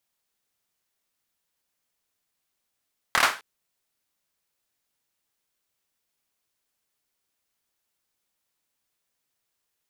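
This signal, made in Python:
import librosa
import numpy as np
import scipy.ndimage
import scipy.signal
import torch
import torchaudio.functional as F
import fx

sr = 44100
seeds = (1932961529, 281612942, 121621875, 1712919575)

y = fx.drum_clap(sr, seeds[0], length_s=0.26, bursts=4, spacing_ms=26, hz=1300.0, decay_s=0.32)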